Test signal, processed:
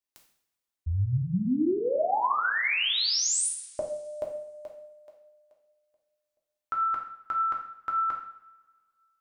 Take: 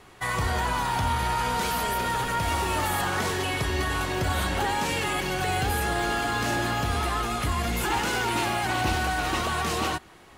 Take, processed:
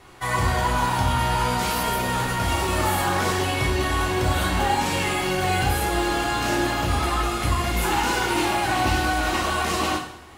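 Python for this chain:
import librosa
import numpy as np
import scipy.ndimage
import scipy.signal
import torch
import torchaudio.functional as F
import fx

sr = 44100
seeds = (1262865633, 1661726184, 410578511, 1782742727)

y = fx.rev_double_slope(x, sr, seeds[0], early_s=0.6, late_s=1.9, knee_db=-20, drr_db=-1.0)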